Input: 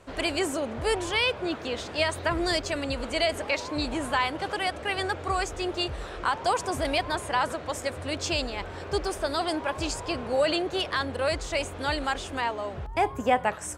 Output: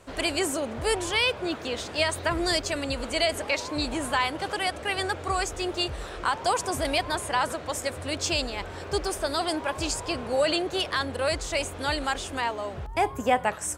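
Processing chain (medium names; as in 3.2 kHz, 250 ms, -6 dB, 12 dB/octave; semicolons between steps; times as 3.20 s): treble shelf 6.3 kHz +8 dB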